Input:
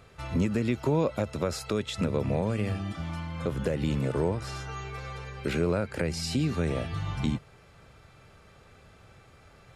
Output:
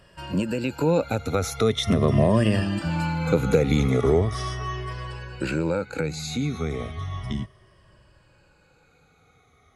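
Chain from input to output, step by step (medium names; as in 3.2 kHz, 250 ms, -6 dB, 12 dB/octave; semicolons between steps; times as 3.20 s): drifting ripple filter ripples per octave 1.3, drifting -0.36 Hz, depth 14 dB; Doppler pass-by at 2.93 s, 22 m/s, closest 26 m; trim +8 dB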